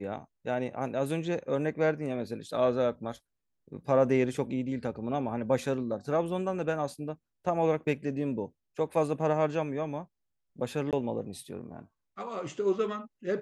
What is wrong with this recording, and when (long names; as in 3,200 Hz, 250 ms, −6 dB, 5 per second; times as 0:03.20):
0:10.91–0:10.93: drop-out 18 ms